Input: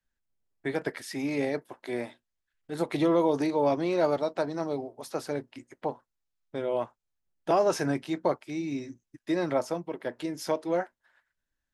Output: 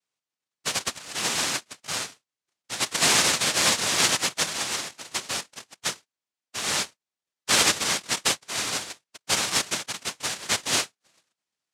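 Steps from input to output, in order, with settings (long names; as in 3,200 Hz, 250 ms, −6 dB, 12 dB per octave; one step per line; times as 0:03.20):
cochlear-implant simulation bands 1
level +2.5 dB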